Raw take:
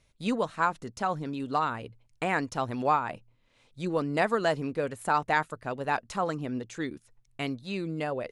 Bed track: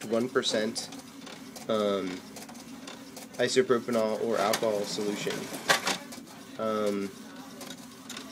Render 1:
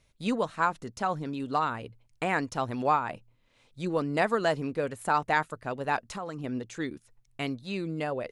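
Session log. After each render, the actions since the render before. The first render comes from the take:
0:06.00–0:06.44: downward compressor 3 to 1, threshold −34 dBFS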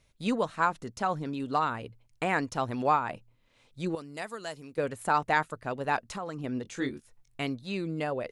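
0:03.95–0:04.78: first-order pre-emphasis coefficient 0.8
0:06.63–0:07.41: double-tracking delay 22 ms −4 dB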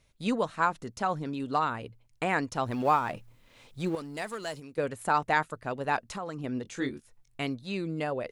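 0:02.66–0:04.60: mu-law and A-law mismatch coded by mu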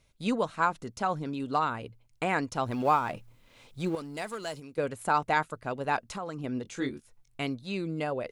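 notch filter 1,800 Hz, Q 15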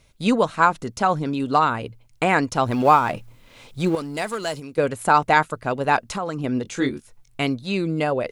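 level +9.5 dB

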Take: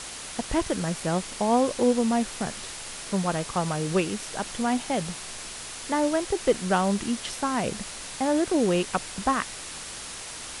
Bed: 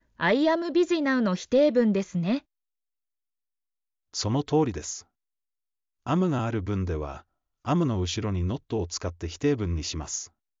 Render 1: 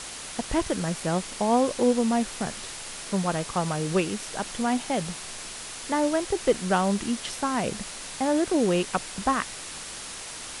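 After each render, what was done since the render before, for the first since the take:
hum removal 60 Hz, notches 2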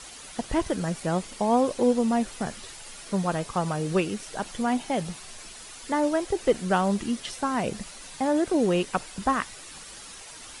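broadband denoise 9 dB, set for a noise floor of −39 dBFS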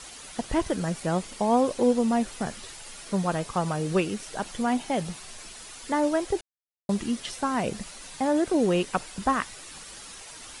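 0:06.41–0:06.89: silence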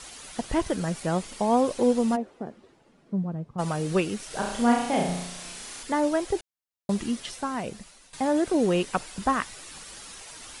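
0:02.15–0:03.58: resonant band-pass 480 Hz → 130 Hz, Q 1.3
0:04.27–0:05.83: flutter between parallel walls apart 5.8 metres, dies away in 0.76 s
0:07.06–0:08.13: fade out, to −14.5 dB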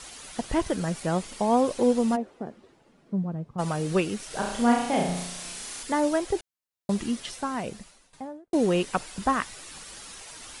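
0:05.16–0:06.19: high-shelf EQ 5,100 Hz +4 dB
0:07.73–0:08.53: fade out and dull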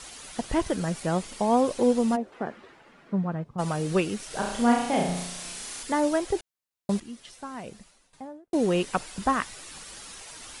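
0:02.32–0:03.44: parametric band 1,700 Hz +13.5 dB 2.5 octaves
0:07.00–0:08.89: fade in, from −14 dB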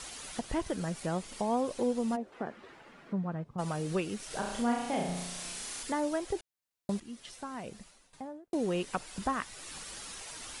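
downward compressor 1.5 to 1, threshold −42 dBFS, peak gain reduction 9.5 dB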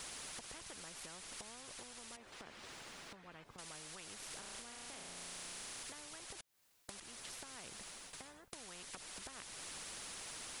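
downward compressor 6 to 1, threshold −43 dBFS, peak gain reduction 17 dB
every bin compressed towards the loudest bin 4 to 1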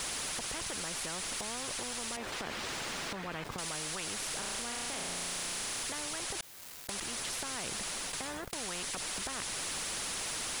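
leveller curve on the samples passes 3
envelope flattener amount 70%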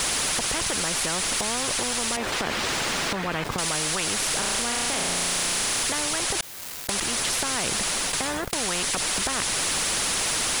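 level +12 dB

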